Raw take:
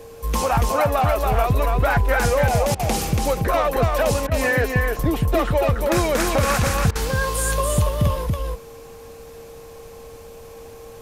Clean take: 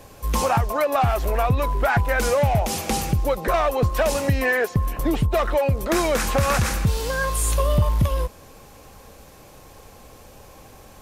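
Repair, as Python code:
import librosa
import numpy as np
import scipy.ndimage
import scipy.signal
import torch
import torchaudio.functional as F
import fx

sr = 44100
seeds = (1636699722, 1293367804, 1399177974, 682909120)

y = fx.notch(x, sr, hz=460.0, q=30.0)
y = fx.fix_interpolate(y, sr, at_s=(2.75, 4.27, 6.91), length_ms=43.0)
y = fx.fix_echo_inverse(y, sr, delay_ms=283, level_db=-3.5)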